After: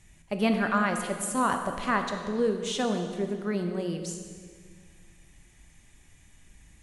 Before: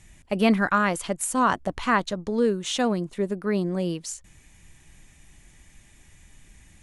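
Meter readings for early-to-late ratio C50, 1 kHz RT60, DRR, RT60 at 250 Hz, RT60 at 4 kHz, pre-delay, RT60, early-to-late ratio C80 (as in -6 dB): 6.0 dB, 1.7 s, 5.0 dB, 2.2 s, 1.6 s, 20 ms, 1.8 s, 7.5 dB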